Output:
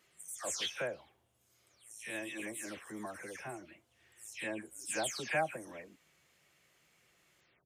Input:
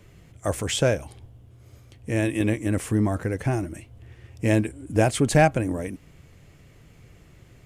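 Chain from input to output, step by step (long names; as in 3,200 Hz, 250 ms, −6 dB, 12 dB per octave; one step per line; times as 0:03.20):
every frequency bin delayed by itself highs early, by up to 251 ms
high-pass filter 1,500 Hz 6 dB per octave
level −6.5 dB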